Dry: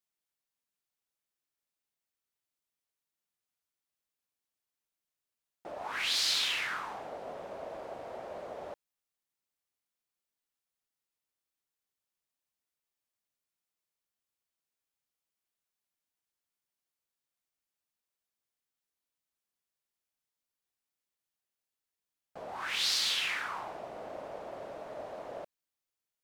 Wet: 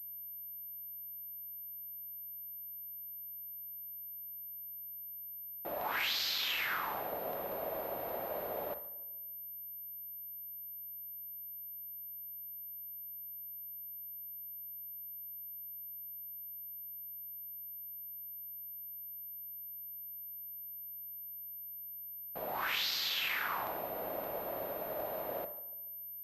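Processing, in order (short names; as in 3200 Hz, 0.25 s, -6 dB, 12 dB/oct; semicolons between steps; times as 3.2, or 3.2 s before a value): de-hum 74.53 Hz, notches 28; compressor 6:1, threshold -34 dBFS, peak gain reduction 8 dB; Schroeder reverb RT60 0.57 s, DRR 13 dB; hum 60 Hz, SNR 33 dB; on a send: tape echo 0.145 s, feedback 54%, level -18.5 dB, low-pass 1300 Hz; on the sum: crackling interface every 0.19 s, samples 128, zero, from 0.3; pulse-width modulation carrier 13000 Hz; gain +3 dB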